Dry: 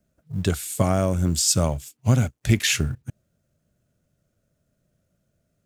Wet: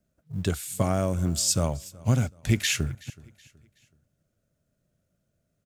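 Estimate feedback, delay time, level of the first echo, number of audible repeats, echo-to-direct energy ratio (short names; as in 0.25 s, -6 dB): 39%, 0.374 s, -22.5 dB, 2, -22.0 dB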